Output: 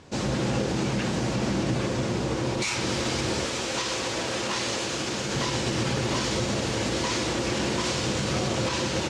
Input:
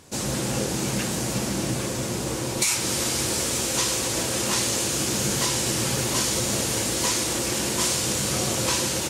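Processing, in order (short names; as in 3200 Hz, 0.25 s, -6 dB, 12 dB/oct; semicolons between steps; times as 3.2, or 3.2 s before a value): air absorption 140 m; limiter -19.5 dBFS, peak gain reduction 7.5 dB; 3.45–5.35 low shelf 300 Hz -8.5 dB; gain +2.5 dB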